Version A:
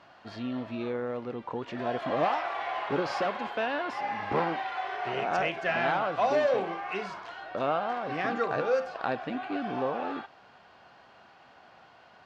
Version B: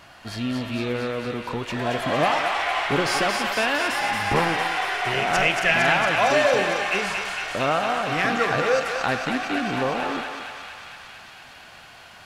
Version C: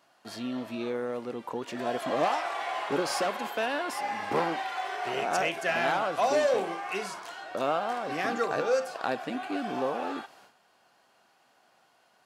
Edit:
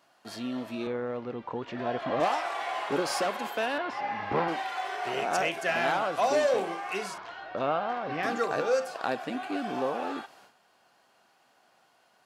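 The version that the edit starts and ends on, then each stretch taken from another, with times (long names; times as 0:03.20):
C
0:00.87–0:02.20: punch in from A
0:03.78–0:04.48: punch in from A
0:07.18–0:08.23: punch in from A
not used: B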